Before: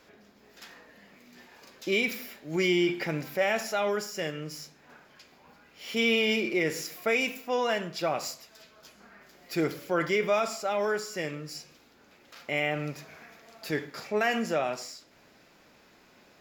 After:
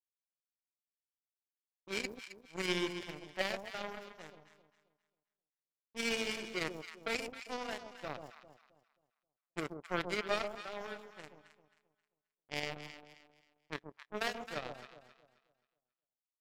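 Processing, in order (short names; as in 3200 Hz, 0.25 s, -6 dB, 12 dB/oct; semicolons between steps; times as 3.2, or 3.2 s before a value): low-pass opened by the level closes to 390 Hz, open at -26.5 dBFS; power-law curve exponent 3; echo with dull and thin repeats by turns 0.133 s, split 960 Hz, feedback 55%, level -6 dB; gain -1.5 dB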